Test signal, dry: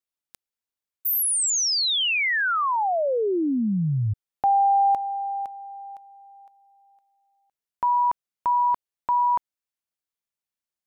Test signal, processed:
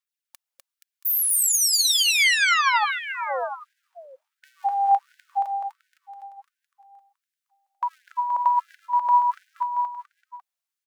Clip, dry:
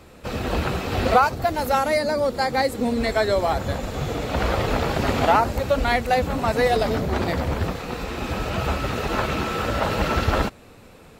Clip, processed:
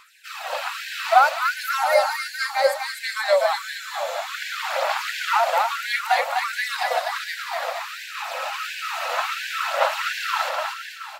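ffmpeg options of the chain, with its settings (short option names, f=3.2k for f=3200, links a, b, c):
-af "aphaser=in_gain=1:out_gain=1:delay=4.4:decay=0.42:speed=0.61:type=sinusoidal,aecho=1:1:250|475|677.5|859.8|1024:0.631|0.398|0.251|0.158|0.1,afftfilt=real='re*gte(b*sr/1024,490*pow(1500/490,0.5+0.5*sin(2*PI*1.4*pts/sr)))':imag='im*gte(b*sr/1024,490*pow(1500/490,0.5+0.5*sin(2*PI*1.4*pts/sr)))':win_size=1024:overlap=0.75"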